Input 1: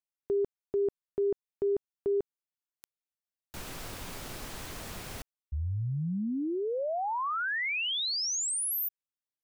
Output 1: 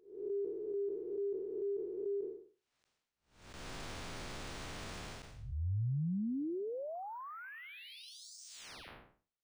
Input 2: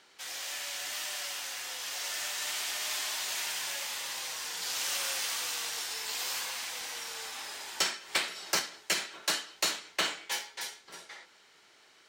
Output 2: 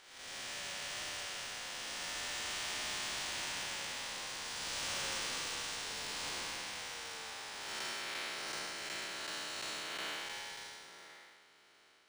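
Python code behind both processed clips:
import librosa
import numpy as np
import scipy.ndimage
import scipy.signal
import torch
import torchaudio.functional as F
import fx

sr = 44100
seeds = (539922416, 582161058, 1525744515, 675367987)

y = fx.spec_blur(x, sr, span_ms=305.0)
y = np.interp(np.arange(len(y)), np.arange(len(y))[::3], y[::3])
y = y * 10.0 ** (-1.5 / 20.0)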